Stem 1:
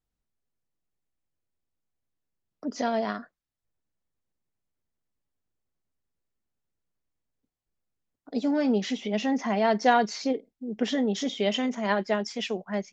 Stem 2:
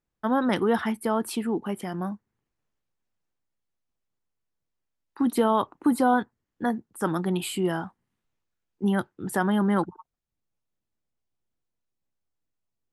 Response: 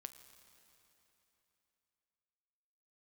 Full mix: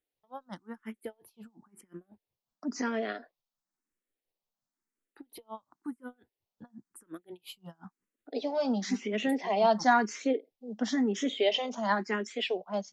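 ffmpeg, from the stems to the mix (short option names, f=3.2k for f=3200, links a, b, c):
-filter_complex "[0:a]highpass=f=220:w=0.5412,highpass=f=220:w=1.3066,volume=1dB[a];[1:a]acompressor=threshold=-28dB:ratio=6,aeval=exprs='val(0)*pow(10,-35*(0.5-0.5*cos(2*PI*5.6*n/s))/20)':c=same,volume=-4dB[b];[a][b]amix=inputs=2:normalize=0,asplit=2[c][d];[d]afreqshift=0.97[e];[c][e]amix=inputs=2:normalize=1"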